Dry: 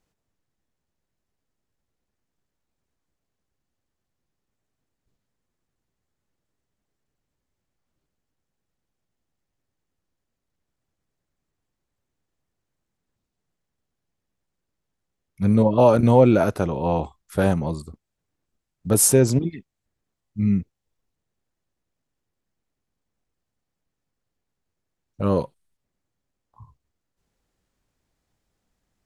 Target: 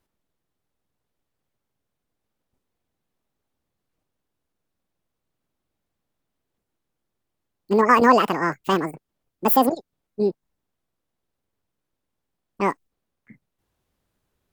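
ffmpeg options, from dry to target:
ffmpeg -i in.wav -af "asetrate=88200,aresample=44100" out.wav

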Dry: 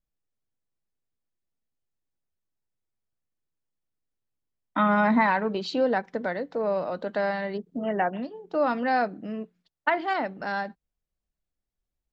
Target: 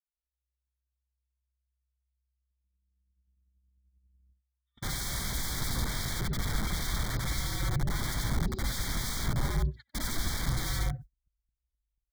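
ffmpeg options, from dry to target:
ffmpeg -i in.wav -filter_complex "[0:a]afftfilt=real='re':imag='-im':win_size=8192:overlap=0.75,equalizer=frequency=1500:width=0.42:gain=-7.5,aecho=1:1:6.4:0.76,acrossover=split=3100[link_01][link_02];[link_01]adelay=160[link_03];[link_03][link_02]amix=inputs=2:normalize=0,asplit=2[link_04][link_05];[link_05]acompressor=threshold=-43dB:ratio=6,volume=2dB[link_06];[link_04][link_06]amix=inputs=2:normalize=0,aeval=exprs='(mod(47.3*val(0)+1,2)-1)/47.3':channel_layout=same,areverse,acompressor=mode=upward:threshold=-59dB:ratio=2.5,areverse,asubboost=boost=9.5:cutoff=180,afreqshift=-64,asuperstop=centerf=2700:order=12:qfactor=3.2,agate=range=-36dB:threshold=-43dB:ratio=16:detection=peak,volume=2.5dB" out.wav

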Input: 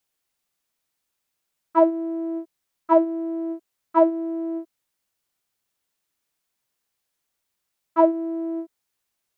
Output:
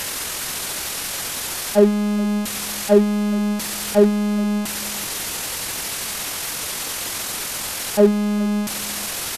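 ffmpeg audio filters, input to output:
ffmpeg -i in.wav -filter_complex "[0:a]aeval=exprs='val(0)+0.5*0.0794*sgn(val(0))':channel_layout=same,asetrate=27781,aresample=44100,atempo=1.5874,asplit=2[link_01][link_02];[link_02]adelay=408.2,volume=-19dB,highshelf=frequency=4000:gain=-9.18[link_03];[link_01][link_03]amix=inputs=2:normalize=0,volume=2dB" out.wav

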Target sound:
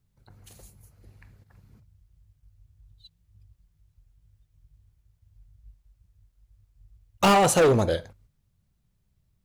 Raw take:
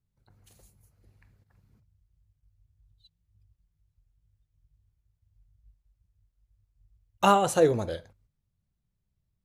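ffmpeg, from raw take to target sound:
ffmpeg -i in.wav -af "volume=24dB,asoftclip=hard,volume=-24dB,volume=8.5dB" out.wav

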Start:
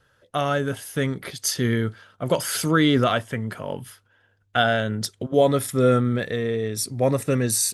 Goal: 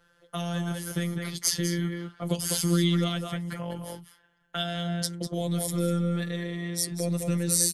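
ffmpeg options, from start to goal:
ffmpeg -i in.wav -filter_complex "[0:a]afftfilt=real='hypot(re,im)*cos(PI*b)':imag='0':win_size=1024:overlap=0.75,asplit=2[link_01][link_02];[link_02]adelay=198.3,volume=-7dB,highshelf=frequency=4000:gain=-4.46[link_03];[link_01][link_03]amix=inputs=2:normalize=0,acrossover=split=290|3000[link_04][link_05][link_06];[link_05]acompressor=threshold=-38dB:ratio=6[link_07];[link_04][link_07][link_06]amix=inputs=3:normalize=0,volume=2dB" out.wav

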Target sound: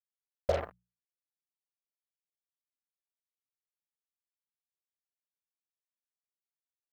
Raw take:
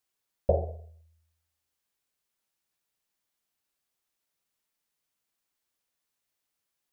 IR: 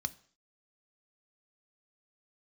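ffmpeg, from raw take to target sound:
-af "aemphasis=mode=production:type=50fm,acrusher=bits=4:mix=0:aa=0.5,lowpass=frequency=1000:poles=1,tiltshelf=frequency=750:gain=-8.5,bandreject=frequency=60:width_type=h:width=6,bandreject=frequency=120:width_type=h:width=6,bandreject=frequency=180:width_type=h:width=6"

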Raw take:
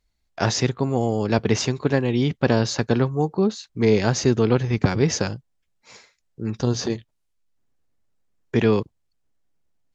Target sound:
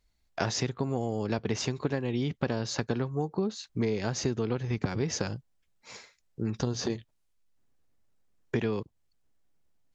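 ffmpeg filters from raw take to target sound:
ffmpeg -i in.wav -af "acompressor=threshold=-26dB:ratio=6" out.wav

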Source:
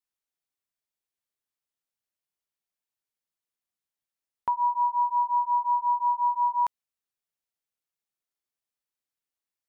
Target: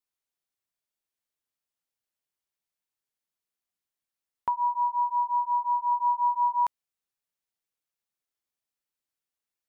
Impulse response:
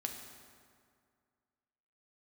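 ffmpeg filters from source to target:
-filter_complex "[0:a]asettb=1/sr,asplit=3[link_01][link_02][link_03];[link_01]atrim=end=4.494[link_04];[link_02]atrim=start=4.49:end=5.92,asetpts=PTS-STARTPTS,afade=type=in:duration=0.004:curve=qsin,afade=type=out:start_time=1.426:duration=0.004:curve=qsin,lowshelf=frequency=420:gain=-9.5[link_05];[link_03]atrim=start=5.916[link_06];[link_04][link_05]acrossfade=duration=0.004:curve1=hsin:curve2=qsin[link_07];[link_07][link_06]acrossfade=duration=0.004:curve1=qsin:curve2=hsin"

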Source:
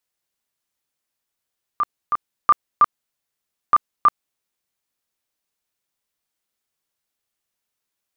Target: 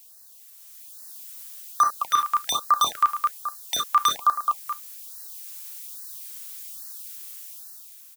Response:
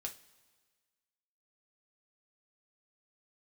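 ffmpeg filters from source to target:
-filter_complex "[0:a]acrossover=split=240|810[link_01][link_02][link_03];[link_03]dynaudnorm=framelen=280:gausssize=7:maxgain=11dB[link_04];[link_01][link_02][link_04]amix=inputs=3:normalize=0,aecho=1:1:214|428|642:0.0668|0.0281|0.0118,asoftclip=type=hard:threshold=-10.5dB,crystalizer=i=8:c=0,asoftclip=type=tanh:threshold=-4.5dB,asplit=2[link_05][link_06];[1:a]atrim=start_sample=2205,atrim=end_sample=3087[link_07];[link_06][link_07]afir=irnorm=-1:irlink=0,volume=-3.5dB[link_08];[link_05][link_08]amix=inputs=2:normalize=0,alimiter=limit=-20.5dB:level=0:latency=1:release=37,equalizer=frequency=730:width_type=o:width=1.2:gain=7,afftfilt=real='re*(1-between(b*sr/1024,520*pow(2800/520,0.5+0.5*sin(2*PI*1.2*pts/sr))/1.41,520*pow(2800/520,0.5+0.5*sin(2*PI*1.2*pts/sr))*1.41))':imag='im*(1-between(b*sr/1024,520*pow(2800/520,0.5+0.5*sin(2*PI*1.2*pts/sr))/1.41,520*pow(2800/520,0.5+0.5*sin(2*PI*1.2*pts/sr))*1.41))':win_size=1024:overlap=0.75,volume=6.5dB"

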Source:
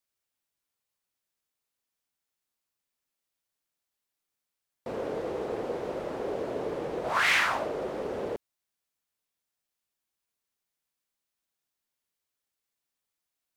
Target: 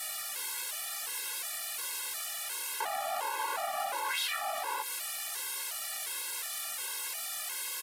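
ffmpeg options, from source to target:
ffmpeg -i in.wav -filter_complex "[0:a]aeval=exprs='val(0)+0.5*0.0447*sgn(val(0))':channel_layout=same,highpass=430,acompressor=threshold=-32dB:ratio=16,aexciter=amount=2.9:drive=6.9:freq=5000,acrossover=split=4300[link_01][link_02];[link_02]acompressor=threshold=-32dB:ratio=4:attack=1:release=60[link_03];[link_01][link_03]amix=inputs=2:normalize=0,acrusher=bits=9:mix=0:aa=0.000001,asplit=2[link_04][link_05];[link_05]adelay=34,volume=-10.5dB[link_06];[link_04][link_06]amix=inputs=2:normalize=0,asetrate=76440,aresample=44100,aresample=32000,aresample=44100,afftfilt=real='re*gt(sin(2*PI*1.4*pts/sr)*(1-2*mod(floor(b*sr/1024/280),2)),0)':imag='im*gt(sin(2*PI*1.4*pts/sr)*(1-2*mod(floor(b*sr/1024/280),2)),0)':win_size=1024:overlap=0.75,volume=4.5dB" out.wav

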